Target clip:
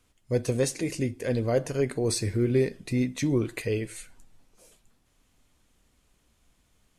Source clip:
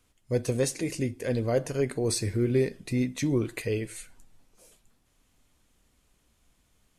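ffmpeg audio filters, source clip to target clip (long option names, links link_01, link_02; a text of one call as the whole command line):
ffmpeg -i in.wav -af "highshelf=frequency=12000:gain=-4.5,volume=1dB" out.wav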